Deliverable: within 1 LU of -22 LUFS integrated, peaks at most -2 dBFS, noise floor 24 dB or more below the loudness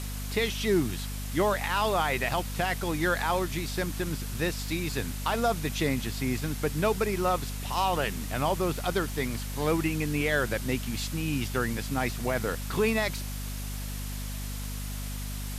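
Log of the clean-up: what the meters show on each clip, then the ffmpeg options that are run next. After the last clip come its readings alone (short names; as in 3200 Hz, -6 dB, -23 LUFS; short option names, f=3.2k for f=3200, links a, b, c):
hum 50 Hz; harmonics up to 250 Hz; hum level -33 dBFS; noise floor -35 dBFS; noise floor target -54 dBFS; loudness -29.5 LUFS; peak -14.5 dBFS; loudness target -22.0 LUFS
-> -af "bandreject=f=50:t=h:w=4,bandreject=f=100:t=h:w=4,bandreject=f=150:t=h:w=4,bandreject=f=200:t=h:w=4,bandreject=f=250:t=h:w=4"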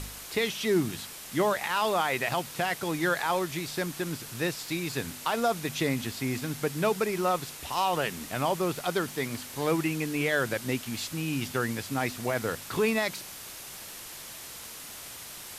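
hum none; noise floor -43 dBFS; noise floor target -54 dBFS
-> -af "afftdn=nr=11:nf=-43"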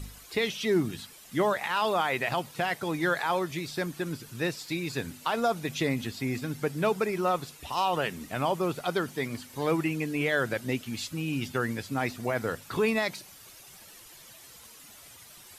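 noise floor -51 dBFS; noise floor target -54 dBFS
-> -af "afftdn=nr=6:nf=-51"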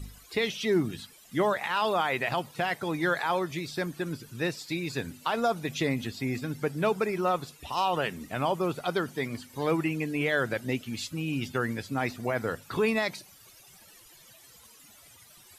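noise floor -55 dBFS; loudness -30.0 LUFS; peak -15.5 dBFS; loudness target -22.0 LUFS
-> -af "volume=8dB"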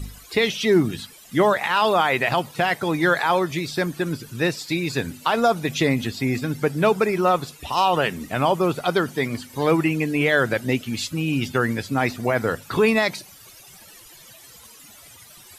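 loudness -22.0 LUFS; peak -7.5 dBFS; noise floor -47 dBFS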